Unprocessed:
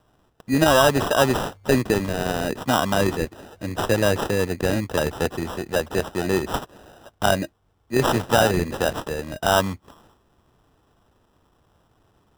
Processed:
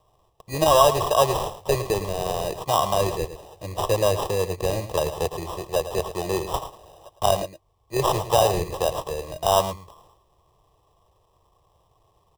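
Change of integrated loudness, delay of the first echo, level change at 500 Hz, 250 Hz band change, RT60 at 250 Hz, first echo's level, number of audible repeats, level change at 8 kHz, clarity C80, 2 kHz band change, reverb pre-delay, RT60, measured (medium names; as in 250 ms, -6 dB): -1.5 dB, 109 ms, 0.0 dB, -9.5 dB, no reverb, -12.0 dB, 1, 0.0 dB, no reverb, -11.0 dB, no reverb, no reverb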